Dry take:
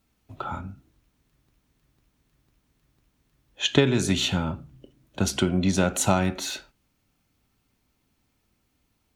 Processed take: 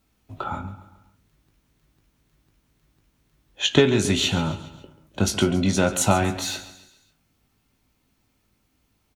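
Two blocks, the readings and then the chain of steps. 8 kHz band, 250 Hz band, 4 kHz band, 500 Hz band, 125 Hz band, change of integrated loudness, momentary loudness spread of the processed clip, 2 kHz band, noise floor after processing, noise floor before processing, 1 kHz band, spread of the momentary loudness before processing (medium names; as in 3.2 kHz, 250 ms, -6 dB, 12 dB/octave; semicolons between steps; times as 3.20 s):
+3.0 dB, +1.5 dB, +3.0 dB, +3.5 dB, +1.5 dB, +2.5 dB, 16 LU, +2.5 dB, -69 dBFS, -72 dBFS, +3.0 dB, 16 LU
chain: doubling 19 ms -7.5 dB; on a send: feedback delay 137 ms, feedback 48%, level -15 dB; on the sum: trim +2 dB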